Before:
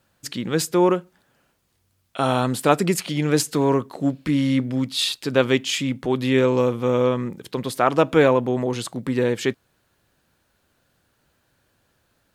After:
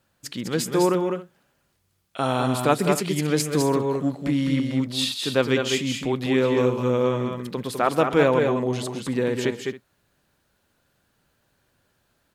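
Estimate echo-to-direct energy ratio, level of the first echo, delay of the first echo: −4.5 dB, −19.5 dB, 135 ms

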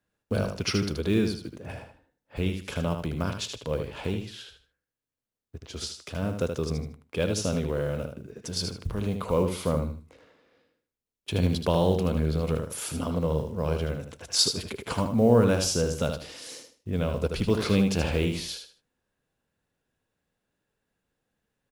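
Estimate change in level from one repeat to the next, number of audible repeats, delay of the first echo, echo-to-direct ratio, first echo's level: −11.5 dB, 3, 77 ms, −6.0 dB, −6.5 dB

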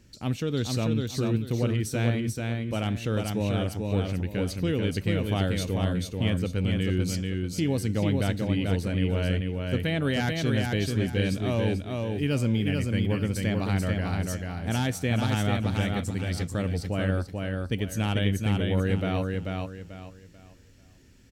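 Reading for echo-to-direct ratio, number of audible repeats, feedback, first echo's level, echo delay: −3.0 dB, 4, 30%, −3.5 dB, 439 ms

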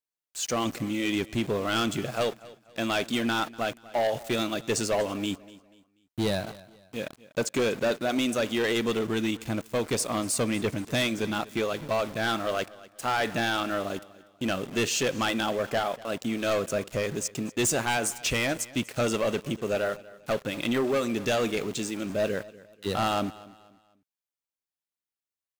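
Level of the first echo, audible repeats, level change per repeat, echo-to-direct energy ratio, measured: −20.0 dB, 2, −9.0 dB, −19.5 dB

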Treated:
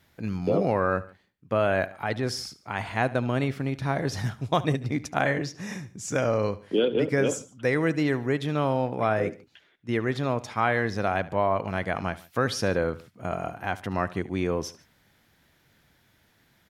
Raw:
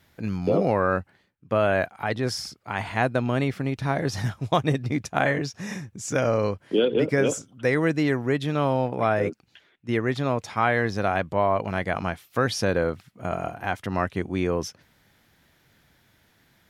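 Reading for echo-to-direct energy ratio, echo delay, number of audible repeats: −17.5 dB, 73 ms, 2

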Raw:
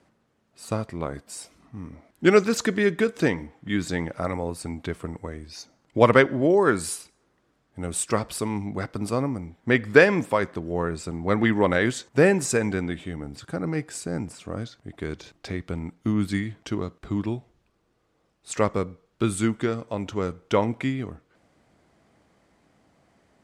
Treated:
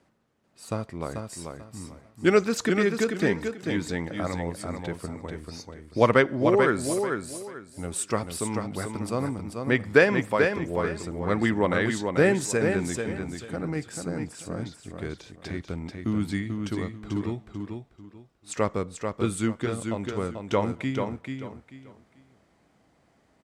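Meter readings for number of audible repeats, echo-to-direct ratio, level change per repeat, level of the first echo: 3, −5.0 dB, −12.0 dB, −5.5 dB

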